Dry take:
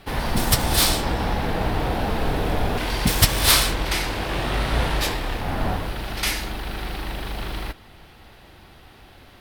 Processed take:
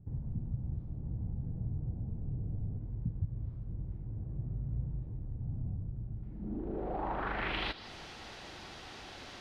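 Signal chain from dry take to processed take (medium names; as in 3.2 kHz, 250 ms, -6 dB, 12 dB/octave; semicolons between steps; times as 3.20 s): compression 2:1, threshold -33 dBFS, peak gain reduction 12.5 dB; bass shelf 120 Hz -10.5 dB; saturation -23.5 dBFS, distortion -18 dB; low-pass sweep 120 Hz -> 6.4 kHz, 6.20–7.93 s; trim +1 dB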